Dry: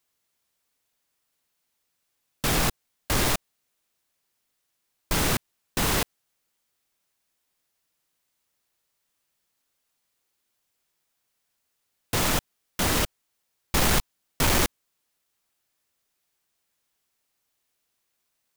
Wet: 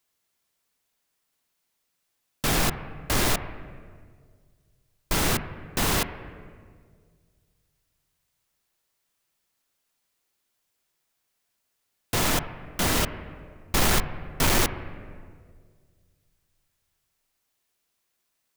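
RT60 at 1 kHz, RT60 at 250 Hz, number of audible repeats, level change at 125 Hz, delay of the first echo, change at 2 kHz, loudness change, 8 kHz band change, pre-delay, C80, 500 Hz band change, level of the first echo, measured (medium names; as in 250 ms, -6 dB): 1.6 s, 2.1 s, no echo, +0.5 dB, no echo, +0.5 dB, 0.0 dB, 0.0 dB, 3 ms, 12.5 dB, +0.5 dB, no echo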